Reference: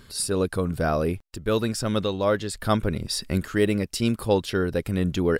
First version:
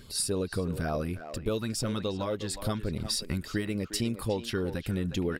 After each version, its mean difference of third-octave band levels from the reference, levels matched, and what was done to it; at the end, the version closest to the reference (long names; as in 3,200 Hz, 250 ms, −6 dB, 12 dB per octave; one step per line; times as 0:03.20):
4.0 dB: downward compressor 6 to 1, threshold −26 dBFS, peak gain reduction 10.5 dB
auto-filter notch sine 3.5 Hz 420–1,800 Hz
far-end echo of a speakerphone 360 ms, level −9 dB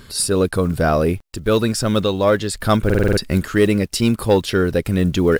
2.0 dB: one scale factor per block 7 bits
soft clipping −11 dBFS, distortion −22 dB
buffer that repeats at 0:02.85, samples 2,048, times 6
level +7.5 dB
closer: second